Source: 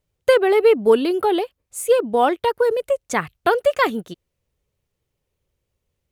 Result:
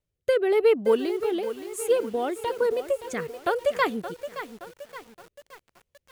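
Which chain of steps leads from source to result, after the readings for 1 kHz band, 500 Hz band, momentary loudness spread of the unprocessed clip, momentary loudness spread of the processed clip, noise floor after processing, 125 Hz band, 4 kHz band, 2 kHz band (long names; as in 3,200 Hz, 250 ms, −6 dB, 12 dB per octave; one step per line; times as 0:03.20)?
−9.5 dB, −6.0 dB, 9 LU, 20 LU, −83 dBFS, −6.0 dB, −7.5 dB, −7.0 dB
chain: rotating-speaker cabinet horn 1 Hz
feedback echo at a low word length 571 ms, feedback 55%, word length 6 bits, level −11 dB
level −5 dB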